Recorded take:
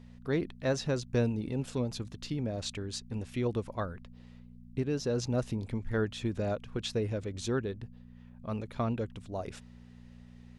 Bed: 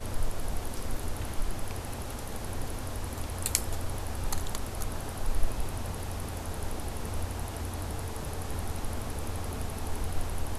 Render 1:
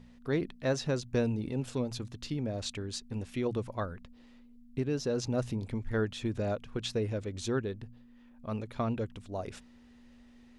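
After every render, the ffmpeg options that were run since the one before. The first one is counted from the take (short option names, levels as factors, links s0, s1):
-af "bandreject=f=60:t=h:w=4,bandreject=f=120:t=h:w=4,bandreject=f=180:t=h:w=4"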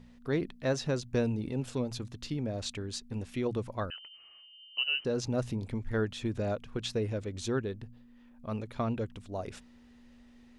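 -filter_complex "[0:a]asettb=1/sr,asplit=3[s0][s1][s2];[s0]atrim=end=3.904[s3];[s1]atrim=start=3.9:end=5.05,asetpts=PTS-STARTPTS,afade=t=in:d=0.004:c=qsin,afade=t=out:st=1.146:d=0.004:c=qsin,lowpass=f=2600:t=q:w=0.5098,lowpass=f=2600:t=q:w=0.6013,lowpass=f=2600:t=q:w=0.9,lowpass=f=2600:t=q:w=2.563,afreqshift=-3100[s4];[s2]atrim=start=5.046[s5];[s3][s4]acrossfade=d=0.004:c1=hsin:c2=qsin[s6];[s6][s5]acrossfade=d=0.004:c1=qsin:c2=hsin"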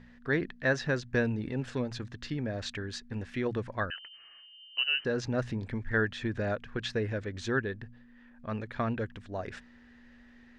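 -af "lowpass=5500,equalizer=f=1700:t=o:w=0.5:g=14"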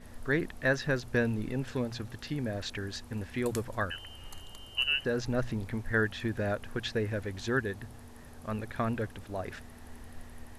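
-filter_complex "[1:a]volume=0.168[s0];[0:a][s0]amix=inputs=2:normalize=0"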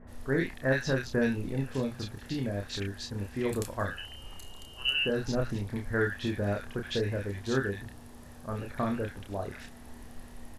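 -filter_complex "[0:a]asplit=2[s0][s1];[s1]adelay=30,volume=0.596[s2];[s0][s2]amix=inputs=2:normalize=0,acrossover=split=1700[s3][s4];[s4]adelay=70[s5];[s3][s5]amix=inputs=2:normalize=0"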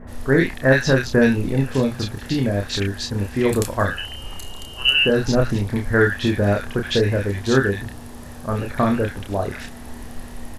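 -af "volume=3.98"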